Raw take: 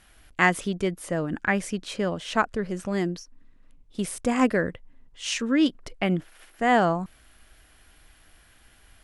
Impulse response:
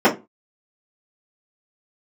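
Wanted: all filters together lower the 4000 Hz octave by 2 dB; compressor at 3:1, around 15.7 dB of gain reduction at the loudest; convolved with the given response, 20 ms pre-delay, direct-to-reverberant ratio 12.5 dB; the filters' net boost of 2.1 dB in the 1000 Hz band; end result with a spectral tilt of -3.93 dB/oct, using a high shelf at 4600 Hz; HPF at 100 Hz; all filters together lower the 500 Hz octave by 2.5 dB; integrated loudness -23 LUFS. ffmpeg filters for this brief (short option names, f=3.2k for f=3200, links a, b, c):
-filter_complex "[0:a]highpass=100,equalizer=f=500:t=o:g=-5,equalizer=f=1k:t=o:g=5,equalizer=f=4k:t=o:g=-6.5,highshelf=f=4.6k:g=6,acompressor=threshold=-37dB:ratio=3,asplit=2[a][b];[1:a]atrim=start_sample=2205,adelay=20[c];[b][c]afir=irnorm=-1:irlink=0,volume=-36.5dB[d];[a][d]amix=inputs=2:normalize=0,volume=15dB"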